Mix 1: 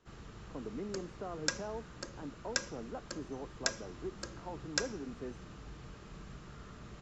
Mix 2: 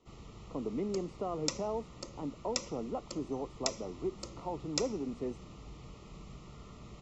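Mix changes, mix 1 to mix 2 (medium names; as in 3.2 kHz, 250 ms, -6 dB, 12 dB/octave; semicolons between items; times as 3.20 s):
speech +6.0 dB; master: add Butterworth band-stop 1.6 kHz, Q 2.5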